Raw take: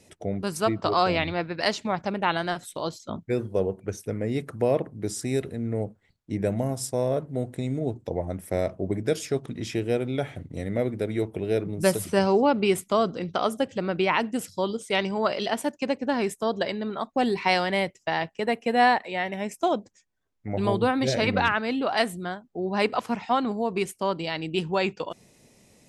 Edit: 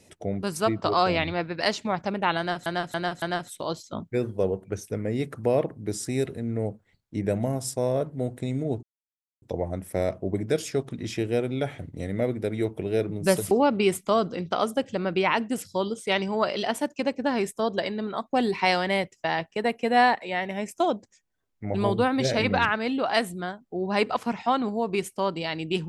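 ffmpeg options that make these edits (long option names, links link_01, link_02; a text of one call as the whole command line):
ffmpeg -i in.wav -filter_complex "[0:a]asplit=6[link_01][link_02][link_03][link_04][link_05][link_06];[link_01]atrim=end=2.662[link_07];[link_02]atrim=start=2.378:end=2.662[link_08];[link_03]atrim=start=2.378:end=2.662[link_09];[link_04]atrim=start=2.378:end=7.99,asetpts=PTS-STARTPTS,afade=type=out:start_time=5.608:duration=0.004:curve=hsin,apad=pad_dur=0.59[link_10];[link_05]atrim=start=7.99:end=12.082,asetpts=PTS-STARTPTS,afade=type=in:duration=0.004:curve=hsin[link_11];[link_06]atrim=start=12.338[link_12];[link_07][link_08]acrossfade=duration=0.004:curve1=hsin:curve2=hsin[link_13];[link_13][link_09]acrossfade=duration=0.004:curve1=hsin:curve2=hsin[link_14];[link_10][link_11]concat=n=2:v=0:a=1[link_15];[link_14][link_15]acrossfade=duration=0.004:curve1=hsin:curve2=hsin[link_16];[link_16][link_12]acrossfade=duration=0.004:curve1=hsin:curve2=hsin" out.wav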